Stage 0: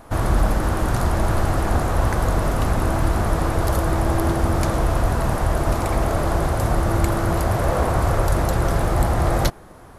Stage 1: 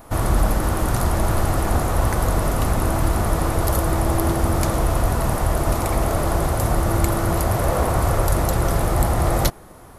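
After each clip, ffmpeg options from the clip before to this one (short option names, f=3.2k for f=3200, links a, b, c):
-af "highshelf=f=10k:g=11.5,bandreject=f=1.6k:w=18"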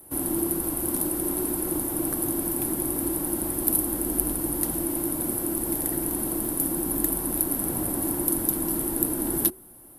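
-af "afreqshift=-380,aexciter=amount=10.6:drive=5.4:freq=9.2k,volume=-11.5dB"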